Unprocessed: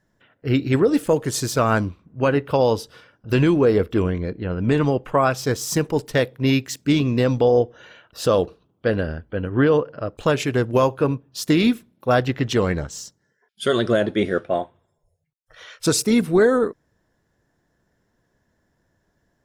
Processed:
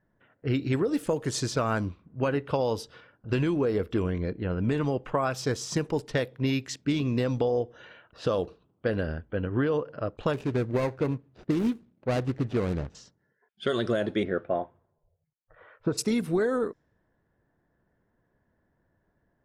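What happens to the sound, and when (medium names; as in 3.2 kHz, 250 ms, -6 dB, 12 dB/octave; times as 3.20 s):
10.33–12.95 s: median filter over 41 samples
14.23–15.97 s: low-pass 2.1 kHz -> 1.2 kHz
whole clip: level-controlled noise filter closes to 1.9 kHz, open at -15.5 dBFS; compression, threshold -19 dBFS; trim -3.5 dB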